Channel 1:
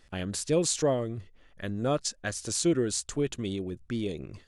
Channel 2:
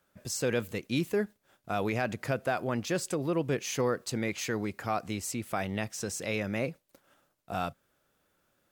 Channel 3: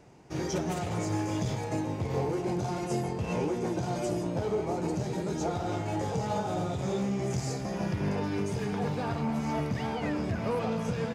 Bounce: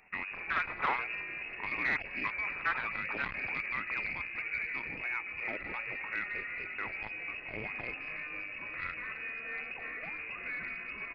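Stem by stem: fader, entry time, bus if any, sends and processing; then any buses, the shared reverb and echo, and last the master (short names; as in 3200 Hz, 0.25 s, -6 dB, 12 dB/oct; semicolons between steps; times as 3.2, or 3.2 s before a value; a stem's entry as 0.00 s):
-3.0 dB, 0.00 s, no send, wavefolder -25.5 dBFS; LFO bell 0.51 Hz 760–1600 Hz +12 dB
-6.0 dB, 1.25 s, no send, dry
-6.0 dB, 0.00 s, no send, notch 1800 Hz, Q 11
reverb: off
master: tilt +2.5 dB/oct; inverted band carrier 2700 Hz; core saturation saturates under 1000 Hz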